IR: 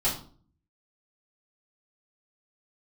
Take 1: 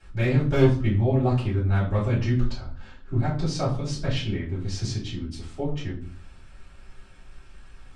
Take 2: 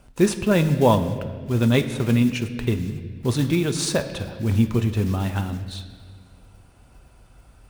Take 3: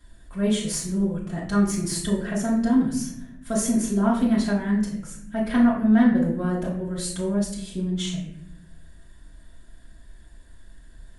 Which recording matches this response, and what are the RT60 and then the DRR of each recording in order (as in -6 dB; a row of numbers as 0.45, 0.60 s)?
1; 0.45, 1.7, 0.70 s; -10.0, 7.0, -7.0 dB